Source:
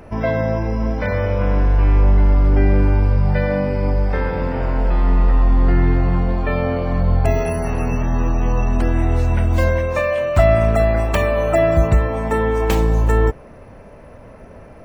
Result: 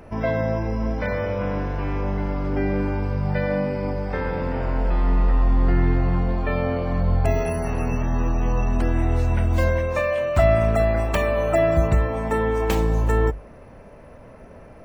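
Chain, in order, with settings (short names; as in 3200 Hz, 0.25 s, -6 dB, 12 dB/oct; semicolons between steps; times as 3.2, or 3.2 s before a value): notches 50/100 Hz; gain -3.5 dB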